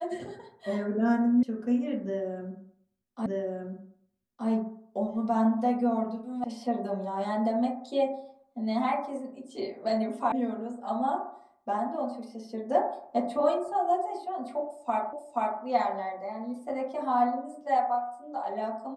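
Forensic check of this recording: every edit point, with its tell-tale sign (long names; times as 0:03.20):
0:01.43: cut off before it has died away
0:03.26: the same again, the last 1.22 s
0:06.44: cut off before it has died away
0:10.32: cut off before it has died away
0:15.13: the same again, the last 0.48 s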